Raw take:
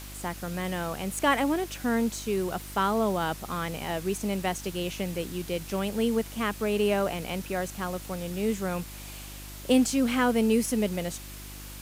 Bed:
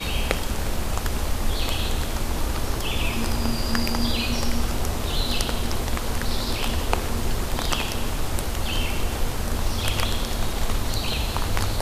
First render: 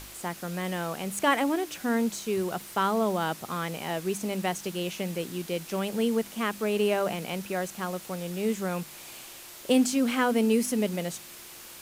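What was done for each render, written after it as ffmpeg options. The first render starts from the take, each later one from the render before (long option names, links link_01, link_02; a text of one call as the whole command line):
ffmpeg -i in.wav -af "bandreject=frequency=50:width_type=h:width=4,bandreject=frequency=100:width_type=h:width=4,bandreject=frequency=150:width_type=h:width=4,bandreject=frequency=200:width_type=h:width=4,bandreject=frequency=250:width_type=h:width=4,bandreject=frequency=300:width_type=h:width=4" out.wav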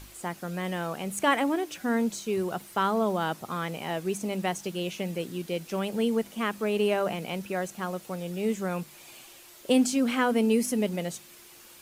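ffmpeg -i in.wav -af "afftdn=noise_reduction=7:noise_floor=-46" out.wav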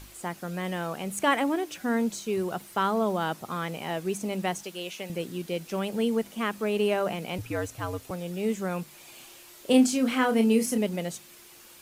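ffmpeg -i in.wav -filter_complex "[0:a]asettb=1/sr,asplit=3[link_01][link_02][link_03];[link_01]atrim=end=4.634[link_04];[link_02]atrim=start=4.63:end=5.1,asetpts=PTS-STARTPTS,afade=type=in:duration=0.004:curve=qsin,afade=type=out:start_time=0.466:duration=0.004:curve=qsin,highpass=frequency=600:poles=1[link_05];[link_03]atrim=start=5.096[link_06];[link_04][link_05]acrossfade=duration=0.004:curve1=hsin:curve2=qsin[link_07];[link_07][link_06]acrossfade=duration=0.004:curve1=qsin:curve2=hsin,asettb=1/sr,asplit=3[link_08][link_09][link_10];[link_08]atrim=end=7.384[link_11];[link_09]atrim=start=7.38:end=8.11,asetpts=PTS-STARTPTS,afade=type=in:duration=0.004:curve=qsin,afade=type=out:start_time=0.726:duration=0.004:curve=qsin,afreqshift=-84[link_12];[link_10]atrim=start=8.106[link_13];[link_11][link_12]acrossfade=duration=0.004:curve1=hsin:curve2=qsin[link_14];[link_14][link_13]acrossfade=duration=0.004:curve1=qsin:curve2=hsin,asettb=1/sr,asplit=3[link_15][link_16][link_17];[link_15]atrim=end=9.144[link_18];[link_16]atrim=start=9.14:end=10.78,asetpts=PTS-STARTPTS,afade=type=in:duration=0.004:curve=qsin,afade=type=out:start_time=1.636:duration=0.004:curve=qsin,asplit=2[link_19][link_20];[link_20]adelay=31,volume=-6.5dB[link_21];[link_19][link_21]amix=inputs=2:normalize=0,atrim=end_sample=72324[link_22];[link_17]atrim=start=10.776[link_23];[link_18][link_22]acrossfade=duration=0.004:curve1=hsin:curve2=qsin[link_24];[link_24][link_23]acrossfade=duration=0.004:curve1=qsin:curve2=hsin" out.wav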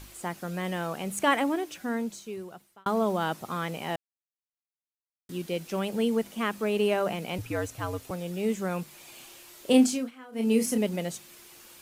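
ffmpeg -i in.wav -filter_complex "[0:a]asplit=6[link_01][link_02][link_03][link_04][link_05][link_06];[link_01]atrim=end=2.86,asetpts=PTS-STARTPTS,afade=type=out:start_time=1.37:duration=1.49[link_07];[link_02]atrim=start=2.86:end=3.96,asetpts=PTS-STARTPTS,afade=type=in:duration=0.004:curve=hsin,afade=type=out:start_time=1.096:duration=0.004:curve=hsin[link_08];[link_03]atrim=start=3.96:end=5.29,asetpts=PTS-STARTPTS,volume=0[link_09];[link_04]atrim=start=5.29:end=10.11,asetpts=PTS-STARTPTS,afade=type=in:duration=0.004:curve=hsin,afade=type=out:start_time=4.5:duration=0.32:curve=qsin:silence=0.0707946[link_10];[link_05]atrim=start=10.11:end=10.32,asetpts=PTS-STARTPTS,volume=-23dB[link_11];[link_06]atrim=start=10.32,asetpts=PTS-STARTPTS,afade=type=in:duration=0.32:curve=qsin:silence=0.0707946[link_12];[link_07][link_08][link_09][link_10][link_11][link_12]concat=n=6:v=0:a=1" out.wav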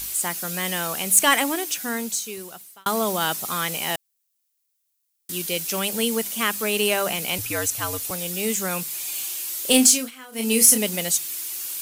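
ffmpeg -i in.wav -af "crystalizer=i=9:c=0,asoftclip=type=tanh:threshold=-3.5dB" out.wav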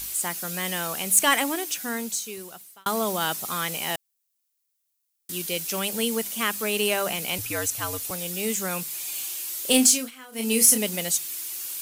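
ffmpeg -i in.wav -af "volume=-2.5dB" out.wav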